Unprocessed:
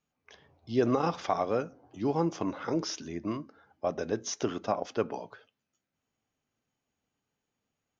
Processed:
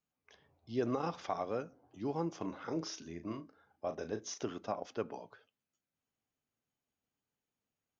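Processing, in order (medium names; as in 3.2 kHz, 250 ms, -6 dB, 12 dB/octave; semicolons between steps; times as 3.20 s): 2.37–4.40 s: doubling 37 ms -9 dB; trim -8 dB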